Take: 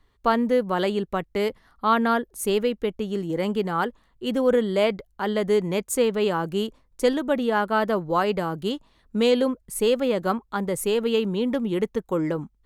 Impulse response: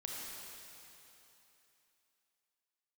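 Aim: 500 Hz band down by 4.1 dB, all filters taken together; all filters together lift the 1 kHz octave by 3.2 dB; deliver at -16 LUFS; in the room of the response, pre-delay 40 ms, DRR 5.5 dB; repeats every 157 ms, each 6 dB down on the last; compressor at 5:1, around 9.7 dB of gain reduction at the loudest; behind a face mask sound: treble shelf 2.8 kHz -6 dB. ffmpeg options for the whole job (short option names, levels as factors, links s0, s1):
-filter_complex "[0:a]equalizer=f=500:t=o:g=-6,equalizer=f=1000:t=o:g=6.5,acompressor=threshold=0.0708:ratio=5,aecho=1:1:157|314|471|628|785|942:0.501|0.251|0.125|0.0626|0.0313|0.0157,asplit=2[s0][s1];[1:a]atrim=start_sample=2205,adelay=40[s2];[s1][s2]afir=irnorm=-1:irlink=0,volume=0.531[s3];[s0][s3]amix=inputs=2:normalize=0,highshelf=f=2800:g=-6,volume=3.76"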